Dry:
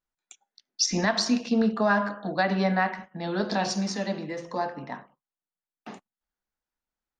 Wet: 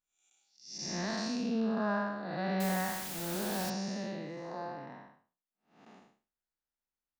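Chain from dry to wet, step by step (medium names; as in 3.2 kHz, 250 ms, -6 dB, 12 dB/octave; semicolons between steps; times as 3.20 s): spectral blur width 251 ms; 2.60–3.70 s: word length cut 6-bit, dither triangular; trim -5.5 dB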